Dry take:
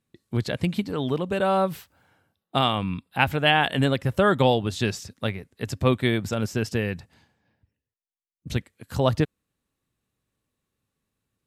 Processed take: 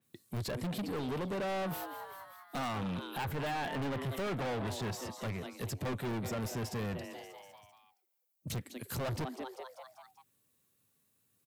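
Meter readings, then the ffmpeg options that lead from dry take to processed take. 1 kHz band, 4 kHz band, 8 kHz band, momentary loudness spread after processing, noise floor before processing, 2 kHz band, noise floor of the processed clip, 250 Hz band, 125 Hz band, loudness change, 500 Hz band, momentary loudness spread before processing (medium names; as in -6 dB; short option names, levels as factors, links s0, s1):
-12.5 dB, -15.5 dB, -5.0 dB, 13 LU, under -85 dBFS, -14.5 dB, -76 dBFS, -12.0 dB, -12.0 dB, -13.0 dB, -13.0 dB, 12 LU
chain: -filter_complex "[0:a]highpass=f=89:w=0.5412,highpass=f=89:w=1.3066,asplit=2[s0][s1];[s1]asplit=5[s2][s3][s4][s5][s6];[s2]adelay=195,afreqshift=130,volume=0.119[s7];[s3]adelay=390,afreqshift=260,volume=0.0638[s8];[s4]adelay=585,afreqshift=390,volume=0.0347[s9];[s5]adelay=780,afreqshift=520,volume=0.0186[s10];[s6]adelay=975,afreqshift=650,volume=0.0101[s11];[s7][s8][s9][s10][s11]amix=inputs=5:normalize=0[s12];[s0][s12]amix=inputs=2:normalize=0,asoftclip=type=hard:threshold=0.106,acrossover=split=1800[s13][s14];[s14]acompressor=threshold=0.00708:ratio=6[s15];[s13][s15]amix=inputs=2:normalize=0,aemphasis=mode=production:type=50fm,asoftclip=type=tanh:threshold=0.0211,adynamicequalizer=threshold=0.00178:dfrequency=4600:dqfactor=0.7:tfrequency=4600:tqfactor=0.7:attack=5:release=100:ratio=0.375:range=3:mode=cutabove:tftype=highshelf"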